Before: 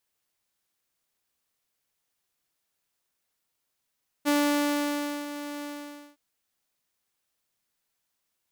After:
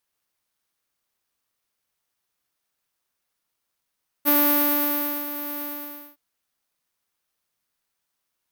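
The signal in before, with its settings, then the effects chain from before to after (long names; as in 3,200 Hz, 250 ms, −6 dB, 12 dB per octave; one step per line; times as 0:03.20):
note with an ADSR envelope saw 291 Hz, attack 32 ms, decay 972 ms, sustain −13.5 dB, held 1.38 s, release 534 ms −18 dBFS
parametric band 1,200 Hz +3 dB 0.77 octaves
bad sample-rate conversion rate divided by 3×, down filtered, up zero stuff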